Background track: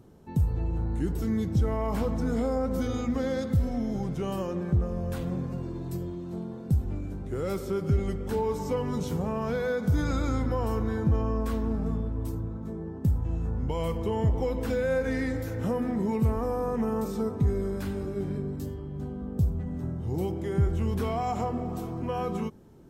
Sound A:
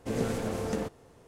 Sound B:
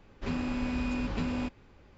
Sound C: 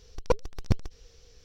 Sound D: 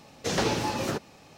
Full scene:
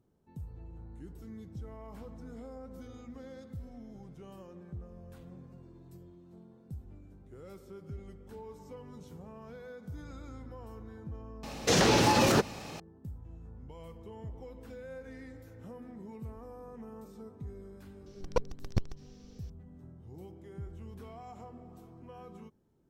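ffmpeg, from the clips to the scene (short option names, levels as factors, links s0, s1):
-filter_complex "[0:a]volume=0.119[s0];[4:a]alimiter=level_in=14.1:limit=0.891:release=50:level=0:latency=1,atrim=end=1.37,asetpts=PTS-STARTPTS,volume=0.2,afade=t=in:d=0.004:c=hsin,afade=t=out:st=1.366:d=0.004:c=hsin,adelay=11430[s1];[3:a]atrim=end=1.44,asetpts=PTS-STARTPTS,volume=0.562,afade=t=in:d=0.004:c=hsin,afade=t=out:st=1.436:d=0.004:c=hsin,adelay=18060[s2];[s0][s1][s2]amix=inputs=3:normalize=0"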